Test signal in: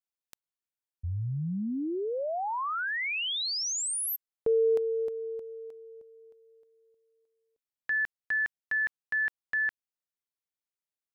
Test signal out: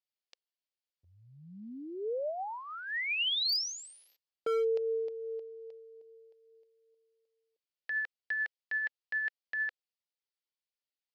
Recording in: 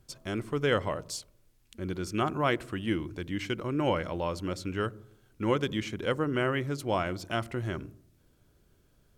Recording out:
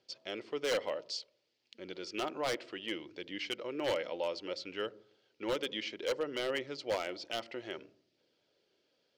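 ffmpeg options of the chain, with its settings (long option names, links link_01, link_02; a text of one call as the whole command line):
ffmpeg -i in.wav -af "aphaser=in_gain=1:out_gain=1:delay=4.2:decay=0.21:speed=0.61:type=triangular,highpass=490,equalizer=frequency=510:width_type=q:width=4:gain=4,equalizer=frequency=720:width_type=q:width=4:gain=-3,equalizer=frequency=1100:width_type=q:width=4:gain=-10,equalizer=frequency=1500:width_type=q:width=4:gain=-7,equalizer=frequency=3000:width_type=q:width=4:gain=3,equalizer=frequency=4700:width_type=q:width=4:gain=6,lowpass=frequency=5200:width=0.5412,lowpass=frequency=5200:width=1.3066,aeval=exprs='0.0631*(abs(mod(val(0)/0.0631+3,4)-2)-1)':channel_layout=same,volume=-1.5dB" out.wav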